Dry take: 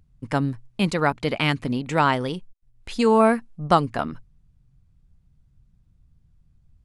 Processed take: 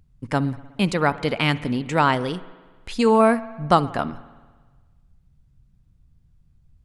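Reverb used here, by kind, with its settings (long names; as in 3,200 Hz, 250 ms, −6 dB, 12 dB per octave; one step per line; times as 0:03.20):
spring reverb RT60 1.4 s, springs 60 ms, chirp 55 ms, DRR 16.5 dB
level +1 dB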